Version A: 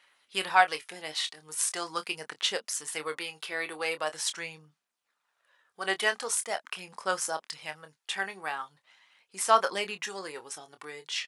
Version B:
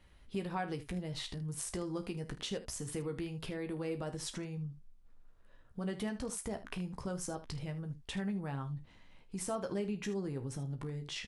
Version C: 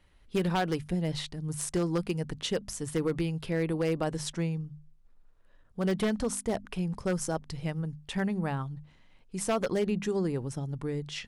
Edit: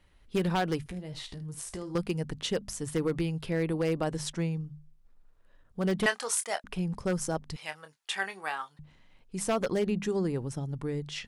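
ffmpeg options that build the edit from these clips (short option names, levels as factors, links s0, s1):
-filter_complex "[0:a]asplit=2[s0][s1];[2:a]asplit=4[s2][s3][s4][s5];[s2]atrim=end=0.862[s6];[1:a]atrim=start=0.858:end=1.952[s7];[s3]atrim=start=1.948:end=6.062[s8];[s0]atrim=start=6.058:end=6.642[s9];[s4]atrim=start=6.638:end=7.562[s10];[s1]atrim=start=7.558:end=8.792[s11];[s5]atrim=start=8.788[s12];[s6][s7]acrossfade=d=0.004:c1=hsin:c2=hsin[s13];[s13][s8]acrossfade=d=0.004:c1=hsin:c2=hsin[s14];[s14][s9]acrossfade=d=0.004:c1=hsin:c2=hsin[s15];[s15][s10]acrossfade=d=0.004:c1=hsin:c2=hsin[s16];[s16][s11]acrossfade=d=0.004:c1=hsin:c2=hsin[s17];[s17][s12]acrossfade=d=0.004:c1=hsin:c2=hsin"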